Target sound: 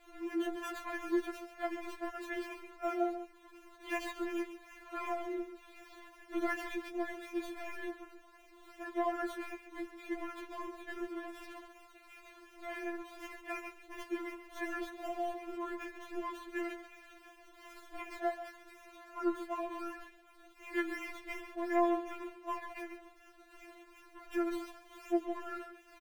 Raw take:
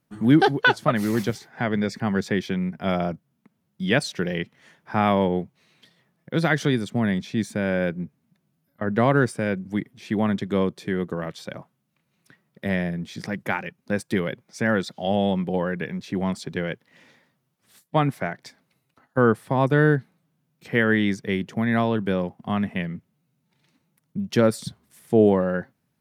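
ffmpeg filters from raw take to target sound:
-filter_complex "[0:a]aeval=exprs='val(0)+0.5*0.0422*sgn(val(0))':c=same,acrossover=split=210|2600[s0][s1][s2];[s2]acrusher=samples=14:mix=1:aa=0.000001:lfo=1:lforange=8.4:lforate=2.7[s3];[s0][s1][s3]amix=inputs=3:normalize=0,agate=range=0.0224:threshold=0.0891:ratio=3:detection=peak,acompressor=threshold=0.01:ratio=2,aecho=1:1:138:0.282,asplit=3[s4][s5][s6];[s5]asetrate=22050,aresample=44100,atempo=2,volume=0.316[s7];[s6]asetrate=33038,aresample=44100,atempo=1.33484,volume=0.141[s8];[s4][s7][s8]amix=inputs=3:normalize=0,equalizer=f=2600:w=2.5:g=5.5,afftfilt=real='re*4*eq(mod(b,16),0)':imag='im*4*eq(mod(b,16),0)':win_size=2048:overlap=0.75"

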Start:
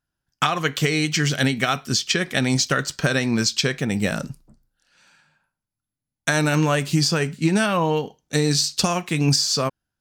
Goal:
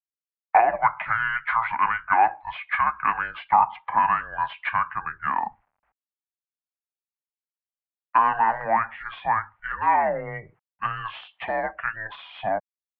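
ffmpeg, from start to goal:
-filter_complex "[0:a]afftdn=nr=29:nf=-39,asplit=2[s0][s1];[s1]highpass=f=720:p=1,volume=2.82,asoftclip=type=tanh:threshold=0.473[s2];[s0][s2]amix=inputs=2:normalize=0,lowpass=f=1800:p=1,volume=0.501,acrossover=split=530|1200[s3][s4][s5];[s3]acompressor=threshold=0.0178:ratio=5[s6];[s6][s4][s5]amix=inputs=3:normalize=0,asetrate=33957,aresample=44100,acrusher=bits=10:mix=0:aa=0.000001,lowshelf=f=780:t=q:w=3:g=-8.5,highpass=f=260:t=q:w=0.5412,highpass=f=260:t=q:w=1.307,lowpass=f=2500:t=q:w=0.5176,lowpass=f=2500:t=q:w=0.7071,lowpass=f=2500:t=q:w=1.932,afreqshift=-220"

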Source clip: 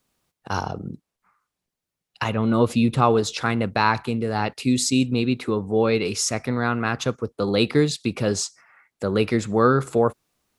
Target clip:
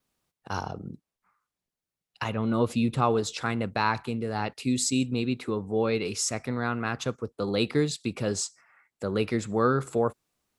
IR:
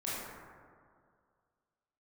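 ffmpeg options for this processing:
-af "adynamicequalizer=threshold=0.00355:dfrequency=7700:dqfactor=7:tfrequency=7700:tqfactor=7:attack=5:release=100:ratio=0.375:range=3.5:mode=boostabove:tftype=bell,volume=0.501"

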